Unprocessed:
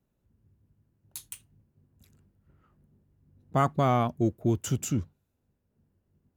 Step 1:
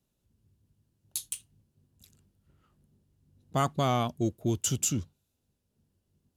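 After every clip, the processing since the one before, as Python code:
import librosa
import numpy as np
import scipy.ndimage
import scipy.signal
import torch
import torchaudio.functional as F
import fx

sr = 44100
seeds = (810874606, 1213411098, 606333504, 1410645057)

y = fx.band_shelf(x, sr, hz=5900.0, db=10.5, octaves=2.4)
y = y * 10.0 ** (-3.0 / 20.0)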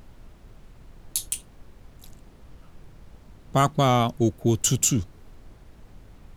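y = fx.dmg_noise_colour(x, sr, seeds[0], colour='brown', level_db=-52.0)
y = y * 10.0 ** (7.0 / 20.0)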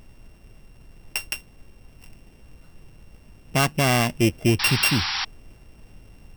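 y = np.r_[np.sort(x[:len(x) // 16 * 16].reshape(-1, 16), axis=1).ravel(), x[len(x) // 16 * 16:]]
y = fx.rider(y, sr, range_db=10, speed_s=0.5)
y = fx.spec_paint(y, sr, seeds[1], shape='noise', start_s=4.59, length_s=0.66, low_hz=740.0, high_hz=5700.0, level_db=-29.0)
y = y * 10.0 ** (2.5 / 20.0)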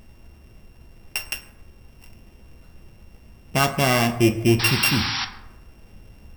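y = fx.rev_fdn(x, sr, rt60_s=0.87, lf_ratio=1.0, hf_ratio=0.55, size_ms=85.0, drr_db=5.5)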